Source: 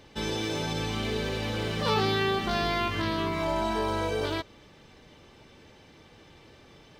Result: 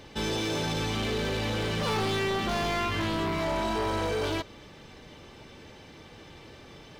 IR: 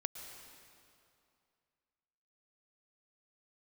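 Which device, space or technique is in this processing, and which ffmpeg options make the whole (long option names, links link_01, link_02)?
saturation between pre-emphasis and de-emphasis: -af "highshelf=frequency=6100:gain=7,asoftclip=type=tanh:threshold=-30dB,highshelf=frequency=6100:gain=-7,volume=5dB"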